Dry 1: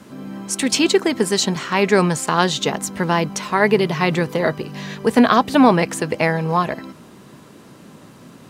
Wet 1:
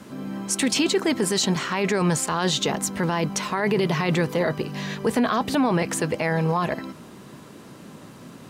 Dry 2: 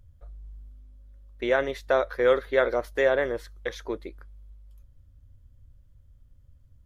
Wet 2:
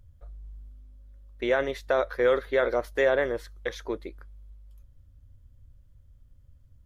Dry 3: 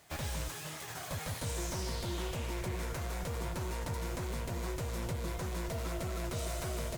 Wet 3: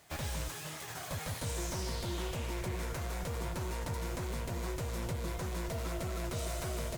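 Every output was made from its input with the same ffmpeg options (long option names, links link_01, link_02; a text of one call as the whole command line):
ffmpeg -i in.wav -af "alimiter=limit=-13dB:level=0:latency=1:release=11" out.wav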